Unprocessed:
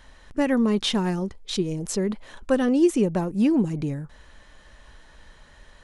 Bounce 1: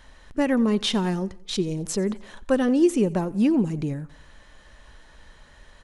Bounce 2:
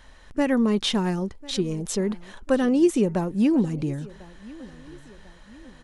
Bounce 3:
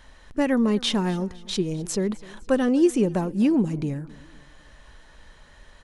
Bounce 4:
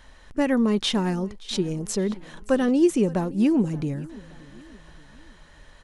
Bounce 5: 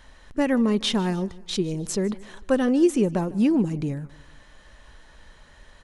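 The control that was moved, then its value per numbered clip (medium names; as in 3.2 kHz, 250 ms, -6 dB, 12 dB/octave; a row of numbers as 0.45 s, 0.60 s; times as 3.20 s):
feedback delay, time: 89 ms, 1046 ms, 254 ms, 574 ms, 152 ms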